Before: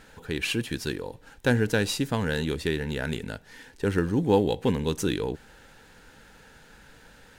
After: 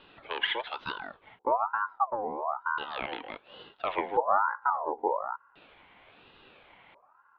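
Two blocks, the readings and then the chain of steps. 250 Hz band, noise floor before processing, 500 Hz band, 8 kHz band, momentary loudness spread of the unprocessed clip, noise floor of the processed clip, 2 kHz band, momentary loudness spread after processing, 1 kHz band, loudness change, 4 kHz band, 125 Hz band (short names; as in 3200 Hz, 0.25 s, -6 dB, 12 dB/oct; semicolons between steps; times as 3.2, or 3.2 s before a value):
-18.0 dB, -54 dBFS, -6.5 dB, under -40 dB, 12 LU, -63 dBFS, -2.5 dB, 14 LU, +9.0 dB, -4.0 dB, -4.0 dB, under -25 dB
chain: LFO low-pass square 0.36 Hz 300–2500 Hz; mistuned SSB -98 Hz 200–3300 Hz; ring modulator with a swept carrier 930 Hz, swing 35%, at 1.1 Hz; gain -2.5 dB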